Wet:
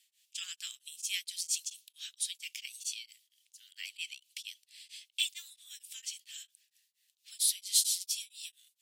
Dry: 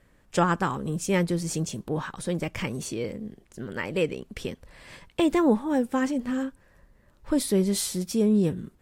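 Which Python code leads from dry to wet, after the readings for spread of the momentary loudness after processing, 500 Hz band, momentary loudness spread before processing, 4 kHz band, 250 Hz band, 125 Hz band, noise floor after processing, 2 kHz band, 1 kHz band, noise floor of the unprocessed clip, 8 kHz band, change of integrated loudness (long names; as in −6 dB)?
20 LU, below −40 dB, 14 LU, +3.5 dB, below −40 dB, below −40 dB, −80 dBFS, −10.5 dB, below −40 dB, −61 dBFS, +2.5 dB, −7.5 dB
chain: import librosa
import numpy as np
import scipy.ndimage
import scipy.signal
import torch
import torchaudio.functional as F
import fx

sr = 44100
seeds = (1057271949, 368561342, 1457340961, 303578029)

y = scipy.signal.sosfilt(scipy.signal.butter(6, 2900.0, 'highpass', fs=sr, output='sos'), x)
y = y * np.abs(np.cos(np.pi * 4.4 * np.arange(len(y)) / sr))
y = F.gain(torch.from_numpy(y), 7.5).numpy()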